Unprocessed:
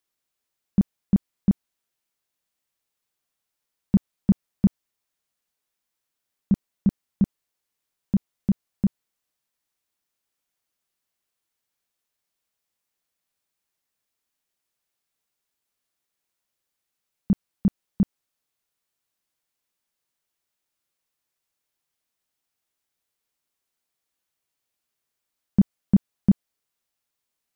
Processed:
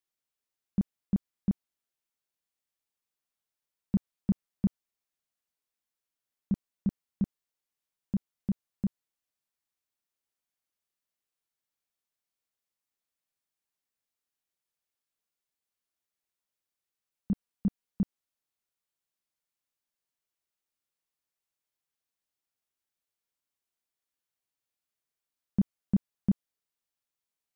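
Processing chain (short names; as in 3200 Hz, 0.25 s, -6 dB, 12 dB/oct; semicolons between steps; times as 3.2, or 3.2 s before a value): 17.32–18.02 comb 4.2 ms, depth 32%; gain -8.5 dB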